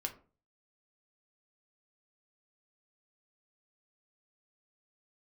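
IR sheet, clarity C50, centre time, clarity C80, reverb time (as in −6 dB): 13.5 dB, 9 ms, 18.5 dB, 0.40 s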